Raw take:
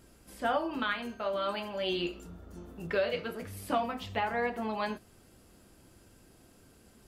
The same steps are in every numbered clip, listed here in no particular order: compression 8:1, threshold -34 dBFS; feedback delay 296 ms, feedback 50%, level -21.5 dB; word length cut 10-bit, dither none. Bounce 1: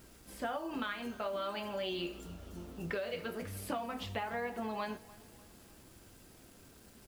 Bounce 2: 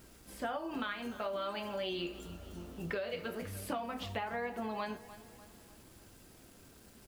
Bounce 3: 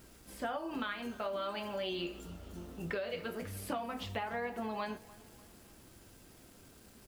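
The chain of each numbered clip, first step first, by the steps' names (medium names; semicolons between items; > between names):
compression > feedback delay > word length cut; feedback delay > word length cut > compression; word length cut > compression > feedback delay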